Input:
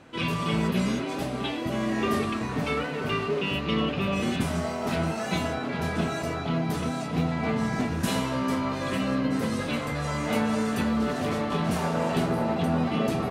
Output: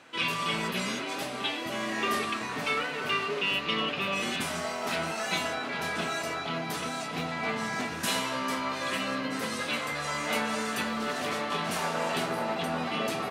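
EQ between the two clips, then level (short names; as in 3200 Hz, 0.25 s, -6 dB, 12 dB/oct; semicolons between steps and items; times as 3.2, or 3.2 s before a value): HPF 290 Hz 6 dB/oct; bell 1800 Hz +6.5 dB 3 oct; high shelf 3200 Hz +8.5 dB; -6.0 dB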